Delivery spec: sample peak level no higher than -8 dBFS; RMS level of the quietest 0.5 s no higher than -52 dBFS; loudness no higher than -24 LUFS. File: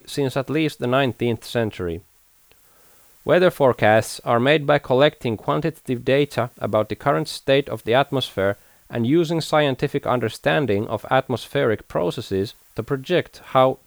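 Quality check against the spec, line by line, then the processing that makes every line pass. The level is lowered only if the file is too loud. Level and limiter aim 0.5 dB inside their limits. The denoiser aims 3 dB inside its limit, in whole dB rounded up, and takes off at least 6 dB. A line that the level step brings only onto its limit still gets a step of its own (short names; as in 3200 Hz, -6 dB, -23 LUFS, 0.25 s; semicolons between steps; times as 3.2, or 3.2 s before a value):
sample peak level -3.5 dBFS: fail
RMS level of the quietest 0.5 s -56 dBFS: OK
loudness -21.0 LUFS: fail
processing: gain -3.5 dB; limiter -8.5 dBFS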